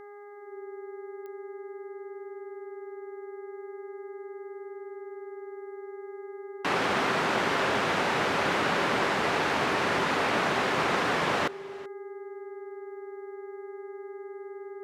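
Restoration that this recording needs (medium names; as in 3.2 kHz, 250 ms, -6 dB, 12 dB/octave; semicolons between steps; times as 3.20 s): de-click; de-hum 409.6 Hz, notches 5; band-stop 390 Hz, Q 30; inverse comb 381 ms -20.5 dB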